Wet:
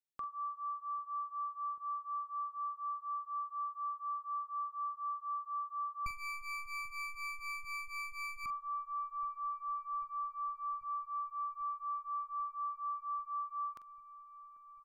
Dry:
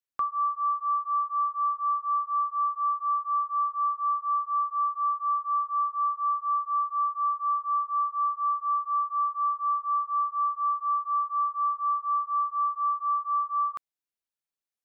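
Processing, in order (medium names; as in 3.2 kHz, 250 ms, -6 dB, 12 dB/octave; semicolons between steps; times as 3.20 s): 6.06–8.46 s: comb filter that takes the minimum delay 0.35 ms; peaking EQ 1.1 kHz -8.5 dB 2.1 oct; doubling 44 ms -13 dB; feedback echo behind a low-pass 792 ms, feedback 80%, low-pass 1.1 kHz, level -17.5 dB; trim -6 dB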